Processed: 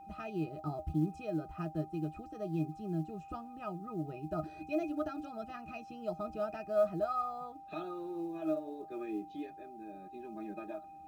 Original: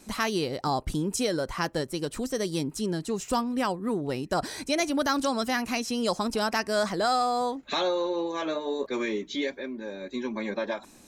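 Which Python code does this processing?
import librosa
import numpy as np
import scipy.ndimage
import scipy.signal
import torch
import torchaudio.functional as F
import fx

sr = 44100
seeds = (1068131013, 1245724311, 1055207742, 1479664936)

y = fx.octave_resonator(x, sr, note='D#', decay_s=0.11)
y = fx.quant_companded(y, sr, bits=8)
y = y + 10.0 ** (-49.0 / 20.0) * np.sin(2.0 * np.pi * 790.0 * np.arange(len(y)) / sr)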